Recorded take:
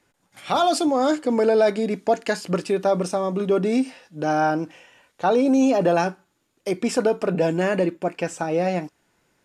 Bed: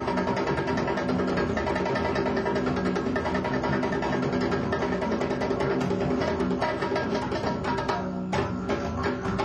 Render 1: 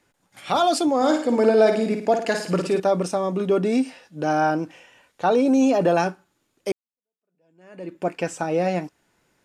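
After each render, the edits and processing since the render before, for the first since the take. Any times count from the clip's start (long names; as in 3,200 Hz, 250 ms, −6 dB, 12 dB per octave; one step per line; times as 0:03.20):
0:00.96–0:02.80: flutter between parallel walls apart 9.4 metres, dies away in 0.49 s
0:06.72–0:08.01: fade in exponential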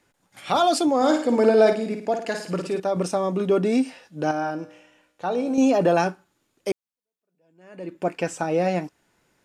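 0:01.73–0:02.96: clip gain −4.5 dB
0:04.31–0:05.58: tuned comb filter 61 Hz, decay 1 s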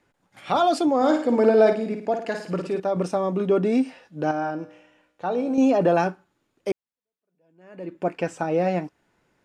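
high-shelf EQ 4,300 Hz −11 dB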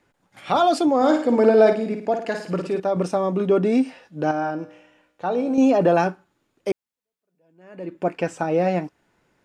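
level +2 dB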